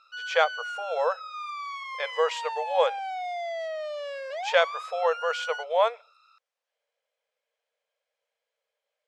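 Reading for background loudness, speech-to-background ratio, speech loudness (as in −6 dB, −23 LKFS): −35.0 LKFS, 7.5 dB, −27.5 LKFS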